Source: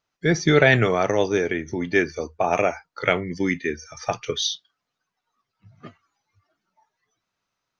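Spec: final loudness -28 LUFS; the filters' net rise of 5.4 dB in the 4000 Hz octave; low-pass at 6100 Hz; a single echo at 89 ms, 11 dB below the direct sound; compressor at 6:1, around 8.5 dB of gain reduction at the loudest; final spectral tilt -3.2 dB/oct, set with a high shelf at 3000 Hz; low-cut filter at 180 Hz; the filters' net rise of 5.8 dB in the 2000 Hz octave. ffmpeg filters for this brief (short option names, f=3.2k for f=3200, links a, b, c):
-af "highpass=180,lowpass=6.1k,equalizer=f=2k:t=o:g=5,highshelf=f=3k:g=3.5,equalizer=f=4k:t=o:g=3,acompressor=threshold=-17dB:ratio=6,aecho=1:1:89:0.282,volume=-4.5dB"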